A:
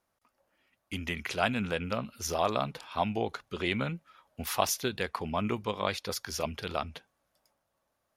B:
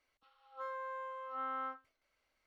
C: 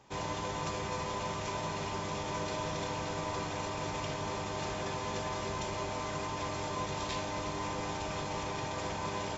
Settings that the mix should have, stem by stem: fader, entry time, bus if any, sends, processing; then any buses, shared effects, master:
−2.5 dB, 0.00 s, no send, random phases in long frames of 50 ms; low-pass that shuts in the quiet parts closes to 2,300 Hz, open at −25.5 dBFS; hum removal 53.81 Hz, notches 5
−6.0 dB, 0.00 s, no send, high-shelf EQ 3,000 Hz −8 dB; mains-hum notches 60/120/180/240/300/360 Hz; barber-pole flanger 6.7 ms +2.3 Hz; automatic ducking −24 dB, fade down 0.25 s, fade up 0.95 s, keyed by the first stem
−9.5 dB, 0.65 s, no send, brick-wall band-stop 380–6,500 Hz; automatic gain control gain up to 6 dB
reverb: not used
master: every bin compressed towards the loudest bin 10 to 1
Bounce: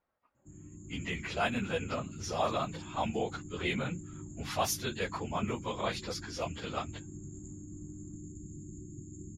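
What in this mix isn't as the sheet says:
stem B −6.0 dB → −14.0 dB
stem C: entry 0.65 s → 0.35 s
master: missing every bin compressed towards the loudest bin 10 to 1

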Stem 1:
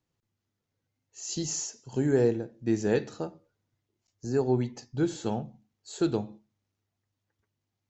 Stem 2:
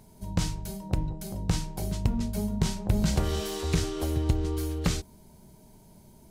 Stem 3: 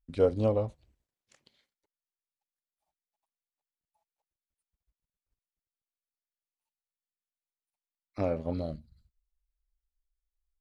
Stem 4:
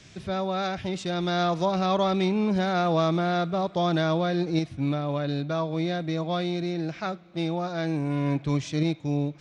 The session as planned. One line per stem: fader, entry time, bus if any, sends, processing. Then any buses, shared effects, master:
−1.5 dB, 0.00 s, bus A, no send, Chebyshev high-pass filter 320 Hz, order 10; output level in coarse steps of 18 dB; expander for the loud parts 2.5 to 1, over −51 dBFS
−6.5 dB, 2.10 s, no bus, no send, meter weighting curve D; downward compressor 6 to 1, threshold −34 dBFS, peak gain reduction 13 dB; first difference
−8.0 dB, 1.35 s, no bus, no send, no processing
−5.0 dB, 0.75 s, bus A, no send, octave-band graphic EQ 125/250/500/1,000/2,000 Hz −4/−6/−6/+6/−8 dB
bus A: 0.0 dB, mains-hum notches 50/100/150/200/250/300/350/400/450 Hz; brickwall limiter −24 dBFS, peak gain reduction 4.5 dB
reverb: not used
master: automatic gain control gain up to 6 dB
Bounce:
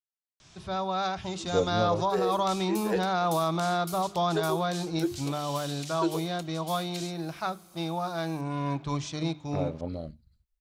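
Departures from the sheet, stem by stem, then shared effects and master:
stem 1: missing output level in coarse steps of 18 dB
stem 4: entry 0.75 s → 0.40 s

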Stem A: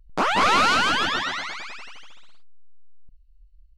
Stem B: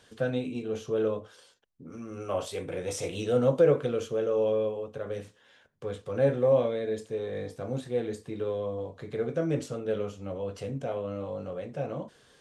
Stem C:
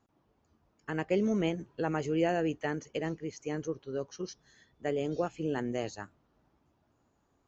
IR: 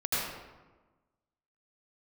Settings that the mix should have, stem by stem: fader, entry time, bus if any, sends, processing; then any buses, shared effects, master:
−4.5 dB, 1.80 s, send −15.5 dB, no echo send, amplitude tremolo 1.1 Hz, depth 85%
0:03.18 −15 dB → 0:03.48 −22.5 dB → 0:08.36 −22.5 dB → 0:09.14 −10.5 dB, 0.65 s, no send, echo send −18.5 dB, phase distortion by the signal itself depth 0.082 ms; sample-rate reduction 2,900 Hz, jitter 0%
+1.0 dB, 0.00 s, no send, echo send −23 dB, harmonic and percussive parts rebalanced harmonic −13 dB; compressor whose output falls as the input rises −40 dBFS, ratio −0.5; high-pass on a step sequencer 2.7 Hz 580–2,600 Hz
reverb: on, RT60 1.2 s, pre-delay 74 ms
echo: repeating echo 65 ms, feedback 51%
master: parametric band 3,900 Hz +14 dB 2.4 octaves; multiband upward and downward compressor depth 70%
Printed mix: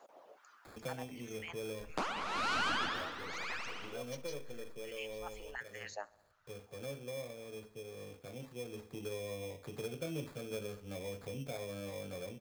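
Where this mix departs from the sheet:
stem C +1.0 dB → −8.5 dB
master: missing parametric band 3,900 Hz +14 dB 2.4 octaves

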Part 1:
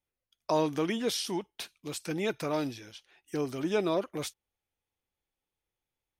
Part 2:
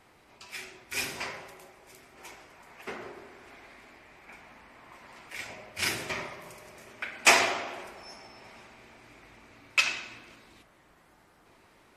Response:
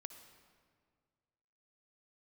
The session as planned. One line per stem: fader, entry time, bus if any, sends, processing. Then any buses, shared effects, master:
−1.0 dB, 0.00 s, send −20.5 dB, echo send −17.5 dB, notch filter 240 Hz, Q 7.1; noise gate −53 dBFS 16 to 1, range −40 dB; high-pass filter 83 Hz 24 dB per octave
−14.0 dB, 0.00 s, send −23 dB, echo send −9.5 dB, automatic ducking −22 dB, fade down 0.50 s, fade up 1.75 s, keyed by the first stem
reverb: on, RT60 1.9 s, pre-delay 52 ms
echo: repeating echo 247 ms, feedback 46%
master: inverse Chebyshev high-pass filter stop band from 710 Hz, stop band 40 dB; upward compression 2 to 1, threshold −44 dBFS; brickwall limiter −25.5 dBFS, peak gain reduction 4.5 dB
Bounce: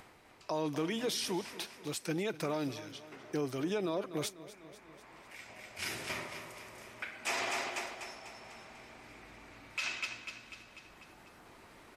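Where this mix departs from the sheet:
stem 2 −14.0 dB → −5.5 dB
master: missing inverse Chebyshev high-pass filter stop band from 710 Hz, stop band 40 dB

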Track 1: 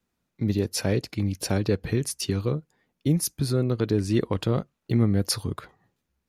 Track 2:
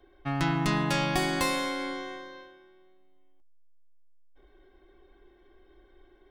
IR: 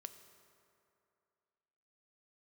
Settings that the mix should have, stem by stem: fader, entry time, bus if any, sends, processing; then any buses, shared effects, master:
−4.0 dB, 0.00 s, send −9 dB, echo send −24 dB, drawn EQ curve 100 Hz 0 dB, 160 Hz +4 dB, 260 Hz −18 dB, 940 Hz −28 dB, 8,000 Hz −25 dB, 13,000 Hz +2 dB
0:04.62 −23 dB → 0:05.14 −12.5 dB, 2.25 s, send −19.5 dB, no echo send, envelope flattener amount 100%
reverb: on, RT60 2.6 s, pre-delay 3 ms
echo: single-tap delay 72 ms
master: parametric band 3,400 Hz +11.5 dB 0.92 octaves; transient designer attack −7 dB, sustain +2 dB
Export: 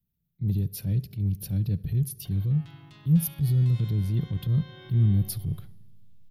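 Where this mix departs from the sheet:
stem 1 −4.0 dB → +2.0 dB
stem 2 −23.0 dB → −32.5 dB

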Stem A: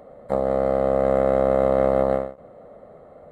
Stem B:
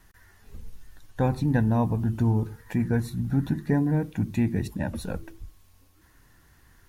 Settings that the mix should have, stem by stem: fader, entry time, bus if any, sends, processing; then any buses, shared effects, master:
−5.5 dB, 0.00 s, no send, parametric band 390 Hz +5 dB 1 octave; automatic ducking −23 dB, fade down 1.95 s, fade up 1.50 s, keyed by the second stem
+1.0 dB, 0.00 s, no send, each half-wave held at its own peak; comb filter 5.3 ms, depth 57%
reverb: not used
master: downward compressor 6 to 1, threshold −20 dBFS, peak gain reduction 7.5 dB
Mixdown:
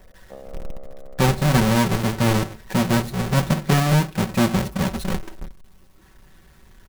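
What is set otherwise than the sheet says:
stem A −5.5 dB → −16.0 dB
master: missing downward compressor 6 to 1, threshold −20 dBFS, peak gain reduction 7.5 dB

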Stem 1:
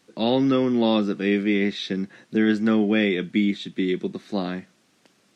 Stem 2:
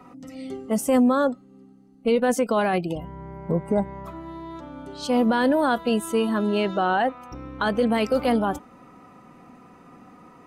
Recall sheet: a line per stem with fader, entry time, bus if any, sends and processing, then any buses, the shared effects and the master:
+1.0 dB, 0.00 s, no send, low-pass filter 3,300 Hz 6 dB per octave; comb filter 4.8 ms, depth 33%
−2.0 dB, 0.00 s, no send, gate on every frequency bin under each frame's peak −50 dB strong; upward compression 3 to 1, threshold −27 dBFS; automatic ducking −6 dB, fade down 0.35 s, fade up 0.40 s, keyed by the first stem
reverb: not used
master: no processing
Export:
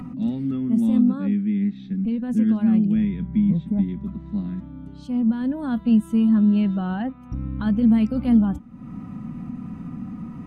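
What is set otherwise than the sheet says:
stem 2 −2.0 dB → +8.5 dB
master: extra drawn EQ curve 230 Hz 0 dB, 400 Hz −22 dB, 3,100 Hz −19 dB, 4,600 Hz −23 dB

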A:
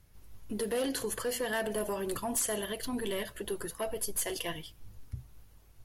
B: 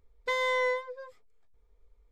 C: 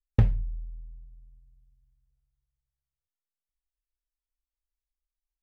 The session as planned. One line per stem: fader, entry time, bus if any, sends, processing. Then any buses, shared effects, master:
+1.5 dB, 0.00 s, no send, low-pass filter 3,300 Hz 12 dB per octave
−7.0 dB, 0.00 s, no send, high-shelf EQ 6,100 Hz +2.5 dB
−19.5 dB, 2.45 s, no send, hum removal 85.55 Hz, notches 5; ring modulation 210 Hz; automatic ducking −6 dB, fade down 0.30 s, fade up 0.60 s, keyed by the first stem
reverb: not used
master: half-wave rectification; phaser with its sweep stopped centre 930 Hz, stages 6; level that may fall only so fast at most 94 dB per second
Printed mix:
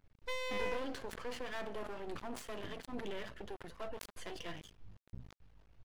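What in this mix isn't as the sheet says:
stem A +1.5 dB → −5.0 dB
master: missing phaser with its sweep stopped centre 930 Hz, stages 6

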